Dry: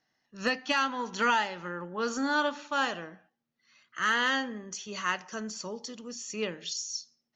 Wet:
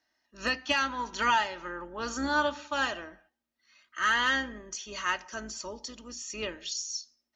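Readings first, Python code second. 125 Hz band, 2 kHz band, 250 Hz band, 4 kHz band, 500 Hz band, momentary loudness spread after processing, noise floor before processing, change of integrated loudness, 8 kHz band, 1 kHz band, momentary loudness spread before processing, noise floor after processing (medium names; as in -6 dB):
-2.5 dB, +0.5 dB, -3.0 dB, +1.0 dB, -2.0 dB, 14 LU, -82 dBFS, +0.5 dB, no reading, +0.5 dB, 13 LU, -83 dBFS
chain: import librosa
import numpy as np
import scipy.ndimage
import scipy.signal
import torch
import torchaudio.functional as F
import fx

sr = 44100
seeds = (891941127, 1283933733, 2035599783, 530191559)

y = fx.octave_divider(x, sr, octaves=2, level_db=-3.0)
y = fx.low_shelf(y, sr, hz=210.0, db=-12.0)
y = y + 0.45 * np.pad(y, (int(3.2 * sr / 1000.0), 0))[:len(y)]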